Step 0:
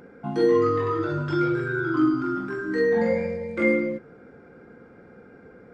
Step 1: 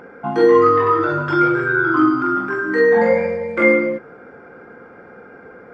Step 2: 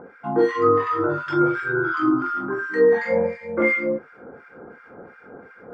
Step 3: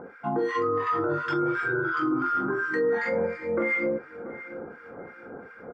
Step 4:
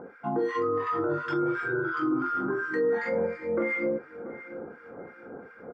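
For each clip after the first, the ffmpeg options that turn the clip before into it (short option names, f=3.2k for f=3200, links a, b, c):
-af "equalizer=f=1.1k:t=o:w=3:g=13,bandreject=f=3.9k:w=17"
-filter_complex "[0:a]areverse,acompressor=mode=upward:threshold=-33dB:ratio=2.5,areverse,acrossover=split=1300[a][b];[a]aeval=exprs='val(0)*(1-1/2+1/2*cos(2*PI*2.8*n/s))':c=same[c];[b]aeval=exprs='val(0)*(1-1/2-1/2*cos(2*PI*2.8*n/s))':c=same[d];[c][d]amix=inputs=2:normalize=0"
-filter_complex "[0:a]alimiter=limit=-18.5dB:level=0:latency=1:release=114,asplit=2[a][b];[b]adelay=684,lowpass=f=2.7k:p=1,volume=-14dB,asplit=2[c][d];[d]adelay=684,lowpass=f=2.7k:p=1,volume=0.35,asplit=2[e][f];[f]adelay=684,lowpass=f=2.7k:p=1,volume=0.35[g];[a][c][e][g]amix=inputs=4:normalize=0"
-af "equalizer=f=330:w=0.43:g=4,volume=-4.5dB"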